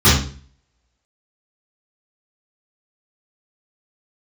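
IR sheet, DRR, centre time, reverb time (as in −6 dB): −14.5 dB, 46 ms, 0.45 s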